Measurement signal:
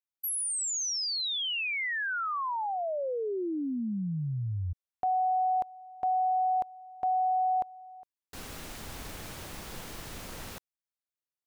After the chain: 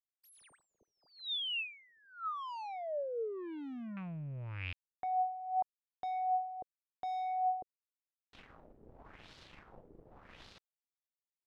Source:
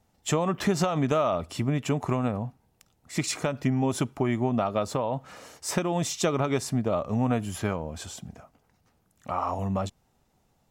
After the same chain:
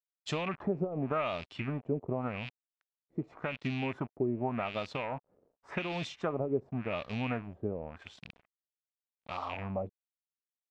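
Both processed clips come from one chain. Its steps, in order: rattle on loud lows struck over -36 dBFS, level -24 dBFS; crossover distortion -44 dBFS; LFO low-pass sine 0.88 Hz 420–4300 Hz; trim -9 dB

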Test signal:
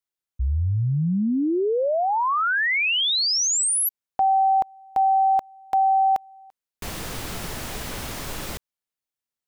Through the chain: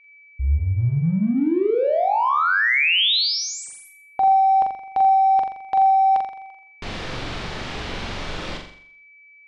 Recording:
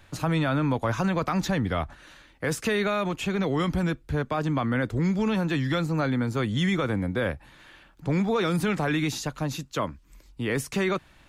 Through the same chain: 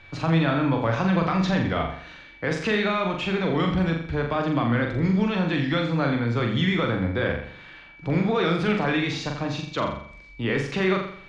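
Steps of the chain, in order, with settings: hum notches 50/100/150/200/250 Hz; whistle 2.3 kHz -54 dBFS; in parallel at -10.5 dB: saturation -32.5 dBFS; on the sum: four-pole ladder low-pass 5.3 kHz, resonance 20%; flutter echo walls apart 7.3 m, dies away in 0.58 s; trim +5 dB

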